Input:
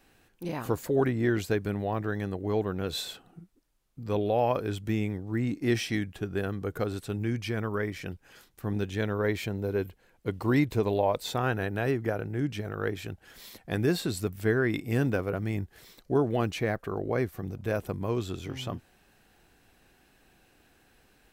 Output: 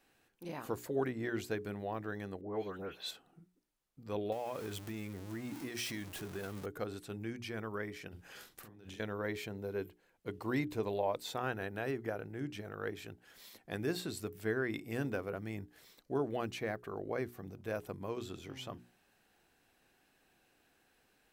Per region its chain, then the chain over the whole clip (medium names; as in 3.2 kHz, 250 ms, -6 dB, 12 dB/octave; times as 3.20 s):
2.41–3.11 s: bass shelf 180 Hz -5.5 dB + phase dispersion highs, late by 138 ms, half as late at 2.4 kHz
4.32–6.66 s: jump at every zero crossing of -35 dBFS + treble shelf 6.1 kHz +7 dB + compression, threshold -27 dBFS
8.08–9.00 s: compressor with a negative ratio -42 dBFS + doubling 46 ms -5.5 dB
whole clip: bass shelf 120 Hz -10 dB; hum notches 60/120/180/240/300/360/420 Hz; trim -7.5 dB